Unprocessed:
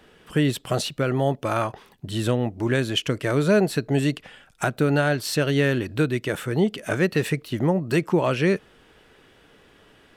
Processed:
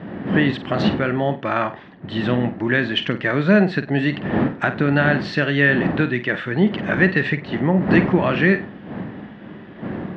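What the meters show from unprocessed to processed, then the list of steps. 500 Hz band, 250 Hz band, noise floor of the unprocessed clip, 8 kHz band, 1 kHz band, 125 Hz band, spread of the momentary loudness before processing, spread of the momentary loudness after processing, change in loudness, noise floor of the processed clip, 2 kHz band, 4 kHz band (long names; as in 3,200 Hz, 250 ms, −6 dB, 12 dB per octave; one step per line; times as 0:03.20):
+1.5 dB, +5.5 dB, −56 dBFS, below −15 dB, +4.0 dB, +2.5 dB, 7 LU, 16 LU, +4.0 dB, −39 dBFS, +9.0 dB, +1.5 dB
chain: wind on the microphone 330 Hz −29 dBFS
loudspeaker in its box 140–3,800 Hz, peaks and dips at 200 Hz +6 dB, 460 Hz −5 dB, 1,800 Hz +10 dB
flutter between parallel walls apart 8.4 metres, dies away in 0.26 s
level +2.5 dB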